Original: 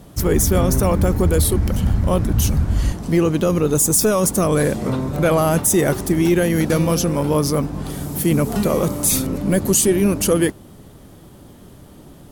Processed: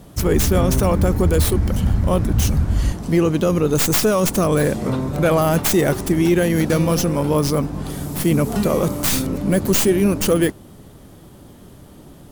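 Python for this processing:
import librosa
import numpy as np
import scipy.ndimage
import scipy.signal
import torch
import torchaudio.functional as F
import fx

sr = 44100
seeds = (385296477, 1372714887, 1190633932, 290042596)

y = fx.tracing_dist(x, sr, depth_ms=0.097)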